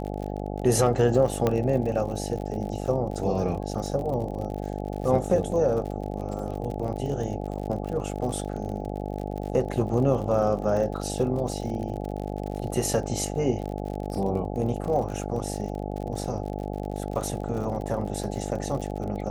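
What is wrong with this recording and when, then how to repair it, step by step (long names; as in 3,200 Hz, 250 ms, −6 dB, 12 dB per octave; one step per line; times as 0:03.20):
mains buzz 50 Hz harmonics 17 −32 dBFS
surface crackle 53 per second −33 dBFS
0:01.47: click −11 dBFS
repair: click removal
hum removal 50 Hz, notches 17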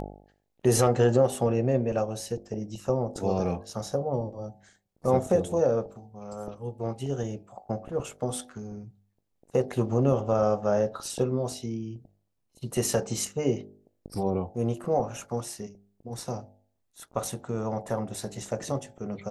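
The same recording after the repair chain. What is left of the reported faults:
none of them is left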